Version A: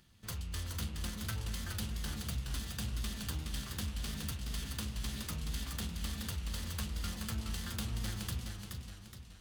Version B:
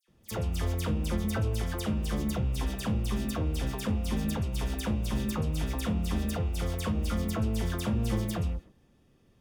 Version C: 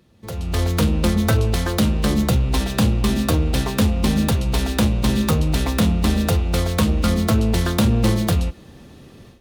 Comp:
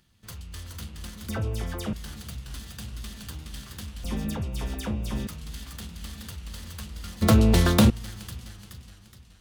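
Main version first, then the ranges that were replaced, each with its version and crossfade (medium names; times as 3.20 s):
A
1.29–1.93 s: from B
4.04–5.27 s: from B
7.22–7.90 s: from C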